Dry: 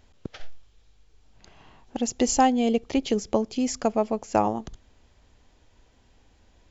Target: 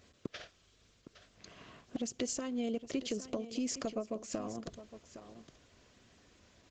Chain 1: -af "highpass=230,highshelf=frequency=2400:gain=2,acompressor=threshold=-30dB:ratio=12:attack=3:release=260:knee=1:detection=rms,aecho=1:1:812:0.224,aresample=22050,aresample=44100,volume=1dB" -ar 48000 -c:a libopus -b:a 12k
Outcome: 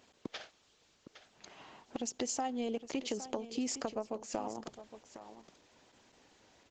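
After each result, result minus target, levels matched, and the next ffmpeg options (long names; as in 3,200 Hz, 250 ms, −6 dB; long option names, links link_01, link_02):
1,000 Hz band +7.5 dB; 125 Hz band −4.5 dB
-af "highpass=230,highshelf=frequency=2400:gain=2,acompressor=threshold=-30dB:ratio=12:attack=3:release=260:knee=1:detection=rms,asuperstop=centerf=850:order=8:qfactor=3.5,aecho=1:1:812:0.224,aresample=22050,aresample=44100,volume=1dB" -ar 48000 -c:a libopus -b:a 12k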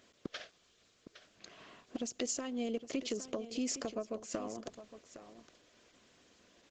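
125 Hz band −4.0 dB
-af "highpass=100,highshelf=frequency=2400:gain=2,acompressor=threshold=-30dB:ratio=12:attack=3:release=260:knee=1:detection=rms,asuperstop=centerf=850:order=8:qfactor=3.5,aecho=1:1:812:0.224,aresample=22050,aresample=44100,volume=1dB" -ar 48000 -c:a libopus -b:a 12k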